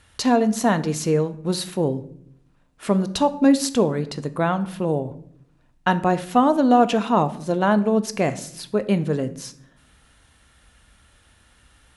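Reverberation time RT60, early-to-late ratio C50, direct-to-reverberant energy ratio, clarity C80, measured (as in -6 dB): 0.70 s, 15.5 dB, 11.0 dB, 19.0 dB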